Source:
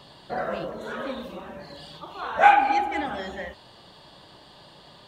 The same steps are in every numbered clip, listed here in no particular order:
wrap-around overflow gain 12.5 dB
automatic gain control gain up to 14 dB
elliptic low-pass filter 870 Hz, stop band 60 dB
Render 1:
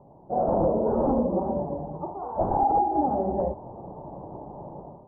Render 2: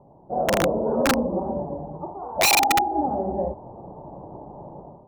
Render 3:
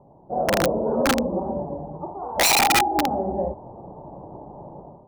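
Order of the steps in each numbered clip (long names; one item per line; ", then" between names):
automatic gain control, then wrap-around overflow, then elliptic low-pass filter
automatic gain control, then elliptic low-pass filter, then wrap-around overflow
elliptic low-pass filter, then automatic gain control, then wrap-around overflow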